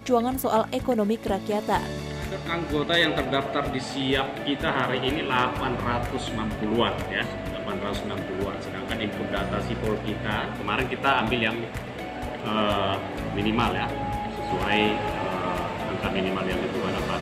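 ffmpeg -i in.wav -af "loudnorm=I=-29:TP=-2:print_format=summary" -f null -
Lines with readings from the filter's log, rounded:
Input Integrated:    -26.5 LUFS
Input True Peak:      -9.6 dBTP
Input LRA:             3.1 LU
Input Threshold:     -36.5 LUFS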